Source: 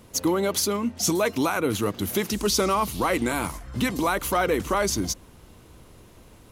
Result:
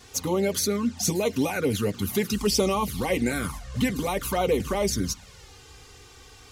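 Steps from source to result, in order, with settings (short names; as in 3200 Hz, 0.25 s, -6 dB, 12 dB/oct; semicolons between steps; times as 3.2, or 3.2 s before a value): band noise 680–7300 Hz -51 dBFS; envelope flanger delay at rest 2.9 ms, full sweep at -18.5 dBFS; notch comb 330 Hz; gain +2.5 dB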